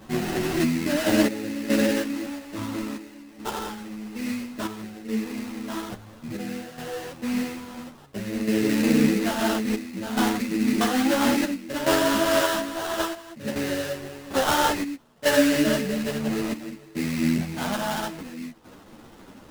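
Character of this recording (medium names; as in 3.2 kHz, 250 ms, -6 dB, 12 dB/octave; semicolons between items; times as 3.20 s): a quantiser's noise floor 8-bit, dither triangular; chopped level 0.59 Hz, depth 65%, duty 75%; aliases and images of a low sample rate 2.3 kHz, jitter 20%; a shimmering, thickened sound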